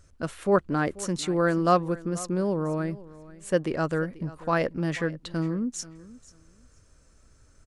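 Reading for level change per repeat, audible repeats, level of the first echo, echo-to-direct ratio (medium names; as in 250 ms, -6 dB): -14.5 dB, 2, -19.0 dB, -19.0 dB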